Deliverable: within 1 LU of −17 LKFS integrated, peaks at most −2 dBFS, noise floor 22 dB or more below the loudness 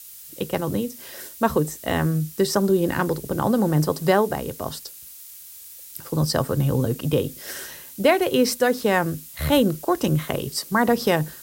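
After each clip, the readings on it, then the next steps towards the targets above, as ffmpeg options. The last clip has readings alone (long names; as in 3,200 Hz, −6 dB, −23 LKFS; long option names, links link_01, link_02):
background noise floor −42 dBFS; target noise floor −45 dBFS; integrated loudness −22.5 LKFS; sample peak −4.5 dBFS; target loudness −17.0 LKFS
→ -af "afftdn=noise_reduction=6:noise_floor=-42"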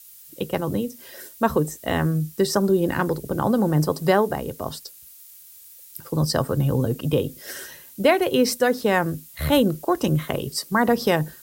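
background noise floor −47 dBFS; integrated loudness −22.5 LKFS; sample peak −4.5 dBFS; target loudness −17.0 LKFS
→ -af "volume=5.5dB,alimiter=limit=-2dB:level=0:latency=1"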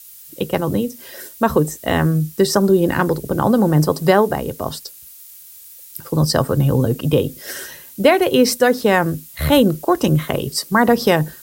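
integrated loudness −17.5 LKFS; sample peak −2.0 dBFS; background noise floor −41 dBFS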